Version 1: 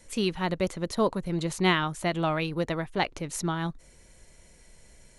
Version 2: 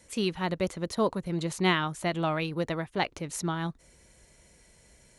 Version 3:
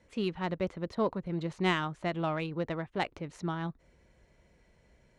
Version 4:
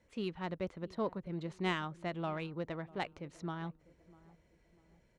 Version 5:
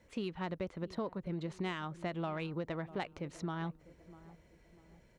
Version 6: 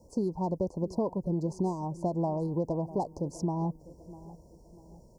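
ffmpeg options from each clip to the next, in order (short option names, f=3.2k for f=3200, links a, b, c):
-af "highpass=45,volume=-1.5dB"
-af "adynamicsmooth=sensitivity=1:basefreq=3k,volume=-3dB"
-filter_complex "[0:a]asplit=2[a][b];[b]adelay=648,lowpass=f=830:p=1,volume=-20dB,asplit=2[c][d];[d]adelay=648,lowpass=f=830:p=1,volume=0.48,asplit=2[e][f];[f]adelay=648,lowpass=f=830:p=1,volume=0.48,asplit=2[g][h];[h]adelay=648,lowpass=f=830:p=1,volume=0.48[i];[a][c][e][g][i]amix=inputs=5:normalize=0,volume=-6dB"
-af "acompressor=threshold=-40dB:ratio=6,volume=5.5dB"
-af "asuperstop=centerf=2200:order=20:qfactor=0.59,volume=8.5dB"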